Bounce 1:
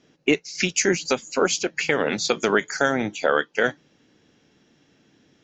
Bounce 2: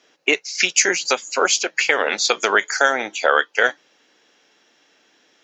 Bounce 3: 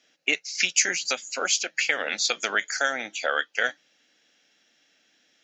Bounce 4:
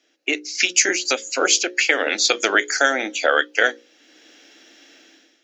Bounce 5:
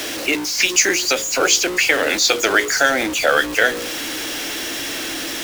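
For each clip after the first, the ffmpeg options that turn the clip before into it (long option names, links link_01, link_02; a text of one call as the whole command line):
ffmpeg -i in.wav -af "highpass=620,volume=6.5dB" out.wav
ffmpeg -i in.wav -af "equalizer=frequency=100:width_type=o:width=0.67:gain=-3,equalizer=frequency=400:width_type=o:width=0.67:gain=-10,equalizer=frequency=1000:width_type=o:width=0.67:gain=-12,volume=-4.5dB" out.wav
ffmpeg -i in.wav -af "highpass=frequency=320:width_type=q:width=3.7,dynaudnorm=framelen=160:gausssize=5:maxgain=15.5dB,bandreject=frequency=60:width_type=h:width=6,bandreject=frequency=120:width_type=h:width=6,bandreject=frequency=180:width_type=h:width=6,bandreject=frequency=240:width_type=h:width=6,bandreject=frequency=300:width_type=h:width=6,bandreject=frequency=360:width_type=h:width=6,bandreject=frequency=420:width_type=h:width=6,bandreject=frequency=480:width_type=h:width=6,bandreject=frequency=540:width_type=h:width=6,volume=-1dB" out.wav
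ffmpeg -i in.wav -af "aeval=exprs='val(0)+0.5*0.0944*sgn(val(0))':channel_layout=same" out.wav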